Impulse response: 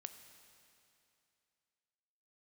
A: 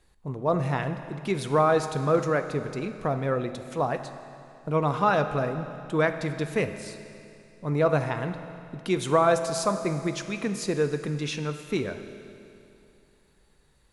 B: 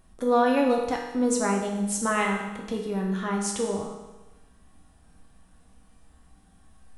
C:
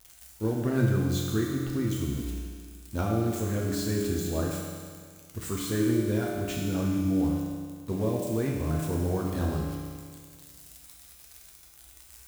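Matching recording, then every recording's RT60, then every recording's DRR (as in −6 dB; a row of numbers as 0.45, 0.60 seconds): A; 2.7, 1.1, 1.9 seconds; 8.0, −0.5, −3.5 decibels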